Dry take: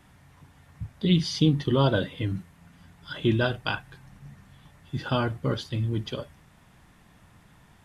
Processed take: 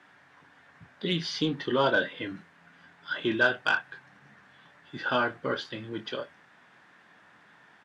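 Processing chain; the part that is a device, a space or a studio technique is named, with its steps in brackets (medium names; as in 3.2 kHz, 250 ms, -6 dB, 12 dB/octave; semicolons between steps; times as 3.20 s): intercom (band-pass 320–4700 Hz; peaking EQ 1.6 kHz +9 dB 0.49 oct; saturation -13 dBFS, distortion -23 dB; doubling 24 ms -9.5 dB)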